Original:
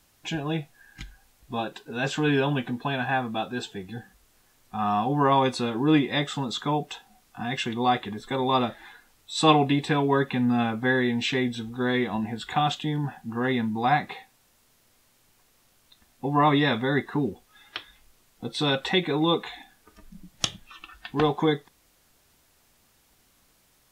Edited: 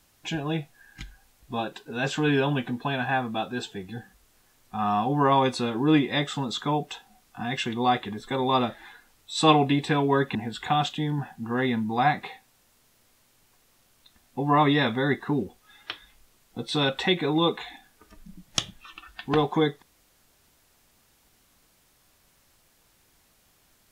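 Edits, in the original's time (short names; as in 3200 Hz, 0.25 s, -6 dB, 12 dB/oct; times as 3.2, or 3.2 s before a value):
10.35–12.21 cut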